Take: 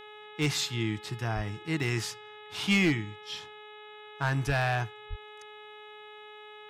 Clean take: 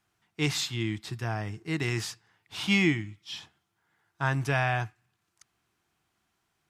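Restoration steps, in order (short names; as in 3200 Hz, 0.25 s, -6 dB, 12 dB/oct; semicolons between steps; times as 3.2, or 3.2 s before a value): clip repair -19 dBFS; de-hum 423 Hz, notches 9; de-plosive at 1.35/4.46/5.09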